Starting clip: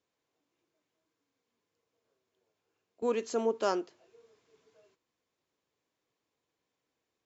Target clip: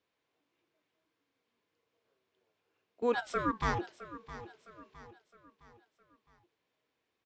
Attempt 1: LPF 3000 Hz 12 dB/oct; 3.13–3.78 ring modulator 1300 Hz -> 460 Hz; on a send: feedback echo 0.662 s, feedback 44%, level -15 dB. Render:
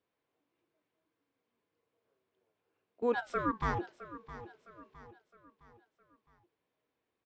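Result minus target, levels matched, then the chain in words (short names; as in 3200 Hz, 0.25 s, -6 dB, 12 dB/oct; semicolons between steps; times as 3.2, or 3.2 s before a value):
4000 Hz band -6.0 dB
LPF 3000 Hz 12 dB/oct; high shelf 2000 Hz +9.5 dB; 3.13–3.78 ring modulator 1300 Hz -> 460 Hz; on a send: feedback echo 0.662 s, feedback 44%, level -15 dB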